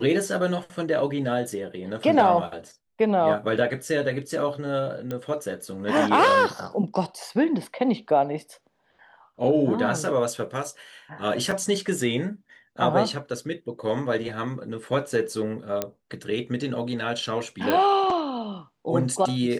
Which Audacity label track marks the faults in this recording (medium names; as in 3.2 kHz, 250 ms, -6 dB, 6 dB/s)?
5.110000	5.110000	pop -18 dBFS
11.510000	11.510000	dropout 4 ms
15.820000	15.820000	pop -10 dBFS
17.700000	17.700000	pop -10 dBFS